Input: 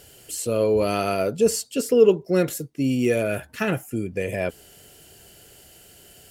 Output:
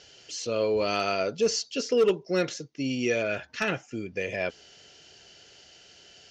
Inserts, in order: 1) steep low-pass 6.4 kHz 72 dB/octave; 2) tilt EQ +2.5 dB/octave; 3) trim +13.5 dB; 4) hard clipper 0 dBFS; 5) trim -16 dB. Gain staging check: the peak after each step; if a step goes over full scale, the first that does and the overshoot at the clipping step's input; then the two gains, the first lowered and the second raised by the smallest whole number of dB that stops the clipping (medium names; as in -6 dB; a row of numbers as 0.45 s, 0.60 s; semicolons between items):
-4.5 dBFS, -7.5 dBFS, +6.0 dBFS, 0.0 dBFS, -16.0 dBFS; step 3, 6.0 dB; step 3 +7.5 dB, step 5 -10 dB